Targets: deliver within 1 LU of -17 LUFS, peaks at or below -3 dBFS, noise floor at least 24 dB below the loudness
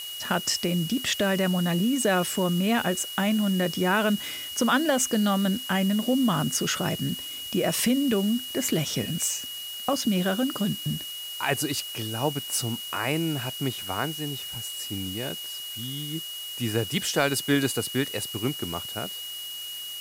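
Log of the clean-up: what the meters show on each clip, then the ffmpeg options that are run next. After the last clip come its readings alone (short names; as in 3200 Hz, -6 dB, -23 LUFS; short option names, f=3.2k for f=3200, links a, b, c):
steady tone 2900 Hz; tone level -35 dBFS; noise floor -37 dBFS; noise floor target -51 dBFS; loudness -26.5 LUFS; peak -10.0 dBFS; loudness target -17.0 LUFS
-> -af "bandreject=f=2.9k:w=30"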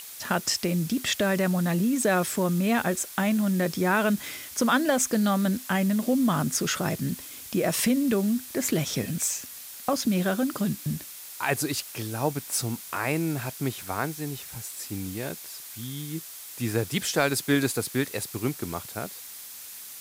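steady tone none; noise floor -42 dBFS; noise floor target -51 dBFS
-> -af "afftdn=nr=9:nf=-42"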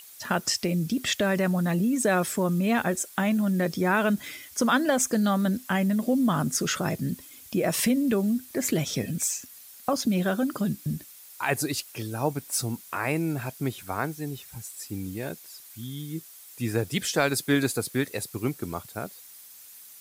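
noise floor -48 dBFS; noise floor target -51 dBFS
-> -af "afftdn=nr=6:nf=-48"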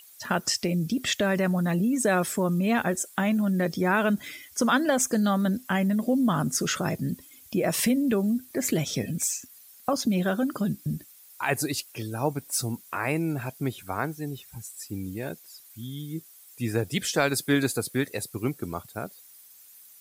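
noise floor -52 dBFS; loudness -27.0 LUFS; peak -10.5 dBFS; loudness target -17.0 LUFS
-> -af "volume=10dB,alimiter=limit=-3dB:level=0:latency=1"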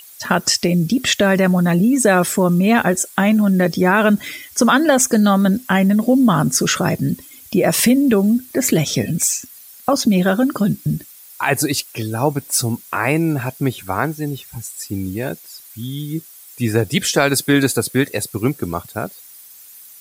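loudness -17.0 LUFS; peak -3.0 dBFS; noise floor -42 dBFS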